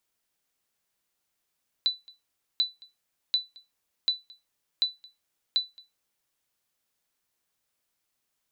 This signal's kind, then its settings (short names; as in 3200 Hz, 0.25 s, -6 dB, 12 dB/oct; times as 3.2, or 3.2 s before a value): sonar ping 3980 Hz, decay 0.20 s, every 0.74 s, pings 6, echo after 0.22 s, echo -25 dB -16 dBFS